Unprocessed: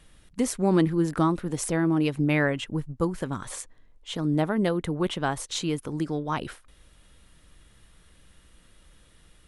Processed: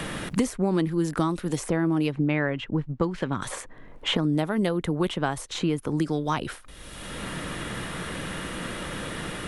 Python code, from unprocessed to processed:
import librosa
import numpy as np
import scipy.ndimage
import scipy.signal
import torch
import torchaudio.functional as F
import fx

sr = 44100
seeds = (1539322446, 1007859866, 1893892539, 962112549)

y = fx.lowpass(x, sr, hz=fx.line((2.11, 3500.0), (3.41, 2000.0)), slope=12, at=(2.11, 3.41), fade=0.02)
y = fx.band_squash(y, sr, depth_pct=100)